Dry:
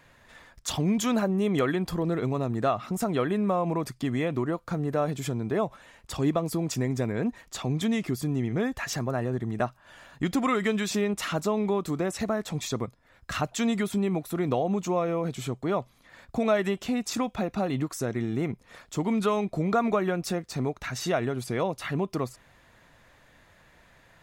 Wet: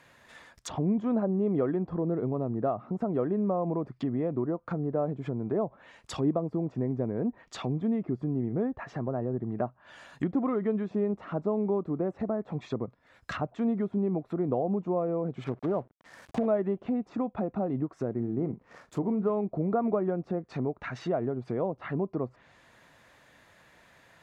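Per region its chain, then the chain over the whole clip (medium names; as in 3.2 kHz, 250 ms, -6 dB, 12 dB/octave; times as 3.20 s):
15.44–16.46 s: low-pass 2.1 kHz 24 dB/octave + companded quantiser 4-bit
18.13–19.30 s: median filter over 15 samples + doubling 42 ms -13 dB
whole clip: high-pass 150 Hz 6 dB/octave; low-pass that closes with the level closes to 690 Hz, closed at -27.5 dBFS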